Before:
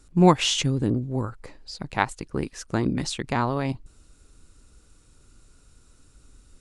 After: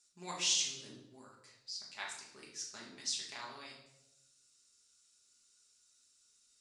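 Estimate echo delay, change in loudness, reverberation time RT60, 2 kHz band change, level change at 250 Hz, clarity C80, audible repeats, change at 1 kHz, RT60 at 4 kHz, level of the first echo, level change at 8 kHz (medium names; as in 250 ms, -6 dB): no echo, -13.0 dB, 0.90 s, -14.0 dB, -32.0 dB, 7.5 dB, no echo, -22.5 dB, 0.70 s, no echo, -3.0 dB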